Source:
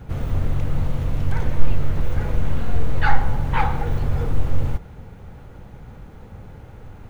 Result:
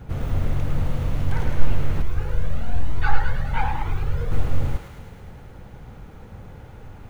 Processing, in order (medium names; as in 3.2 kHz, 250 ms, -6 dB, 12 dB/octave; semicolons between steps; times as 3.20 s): thinning echo 106 ms, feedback 75%, high-pass 720 Hz, level -5 dB; 2.02–4.32 s: Shepard-style flanger rising 1.1 Hz; trim -1 dB